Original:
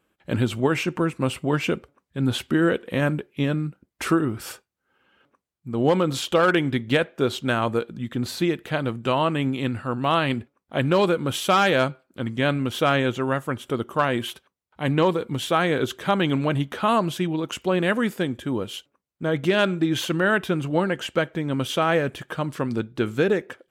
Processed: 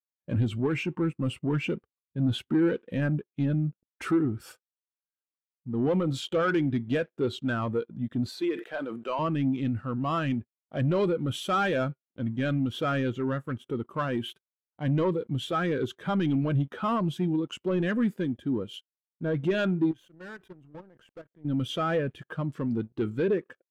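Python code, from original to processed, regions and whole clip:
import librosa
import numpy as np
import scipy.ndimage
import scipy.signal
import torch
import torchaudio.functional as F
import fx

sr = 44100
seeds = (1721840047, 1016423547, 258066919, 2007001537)

y = fx.chain(x, sr, fx.highpass(hz=390.0, slope=12),
    fx.sustainer(db_per_s=91.0), at=(8.29, 9.19))
y = fx.chain(y, sr, fx.dynamic_eq(hz=4200.0, q=0.98, threshold_db=-42.0, ratio=4.0, max_db=-6),
    fx.level_steps(step_db=21),
    fx.tube_stage(drive_db=34.0, bias=0.35), at=(19.91, 21.45))
y = fx.dynamic_eq(y, sr, hz=650.0, q=0.87, threshold_db=-32.0, ratio=4.0, max_db=-3)
y = fx.leveller(y, sr, passes=3)
y = fx.spectral_expand(y, sr, expansion=1.5)
y = y * 10.0 ** (-8.0 / 20.0)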